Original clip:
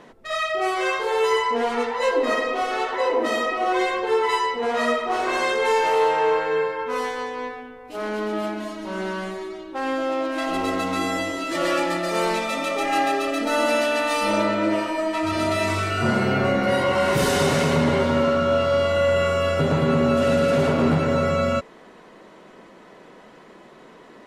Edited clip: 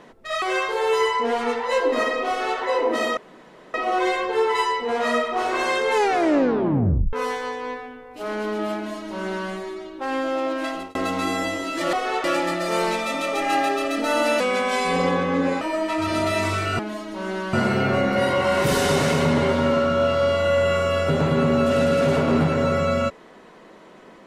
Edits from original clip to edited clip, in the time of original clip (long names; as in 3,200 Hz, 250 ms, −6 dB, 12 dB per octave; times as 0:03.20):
0:00.42–0:00.73: remove
0:02.59–0:02.90: duplicate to 0:11.67
0:03.48: splice in room tone 0.57 s
0:05.68: tape stop 1.19 s
0:08.50–0:09.24: duplicate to 0:16.04
0:10.36–0:10.69: fade out
0:13.83–0:14.86: play speed 85%